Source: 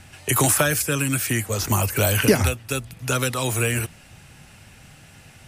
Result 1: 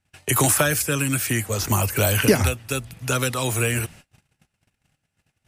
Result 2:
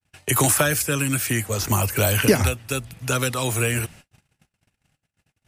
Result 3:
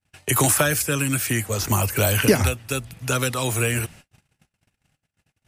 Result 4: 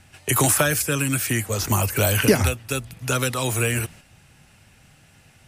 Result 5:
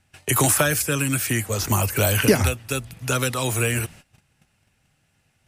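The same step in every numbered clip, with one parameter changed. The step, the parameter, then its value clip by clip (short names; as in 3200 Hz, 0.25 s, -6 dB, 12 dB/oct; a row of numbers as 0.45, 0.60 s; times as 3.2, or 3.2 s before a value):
gate, range: -31, -59, -44, -6, -19 dB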